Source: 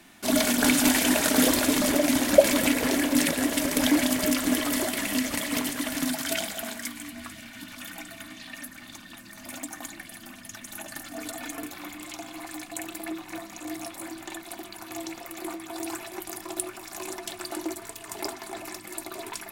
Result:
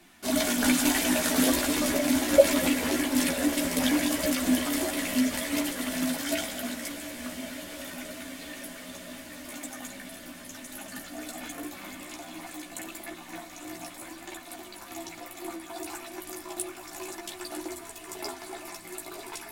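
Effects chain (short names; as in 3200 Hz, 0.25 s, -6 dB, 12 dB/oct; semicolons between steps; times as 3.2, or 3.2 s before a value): diffused feedback echo 1.064 s, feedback 75%, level -13.5 dB; chorus voices 6, 0.35 Hz, delay 14 ms, depth 3.2 ms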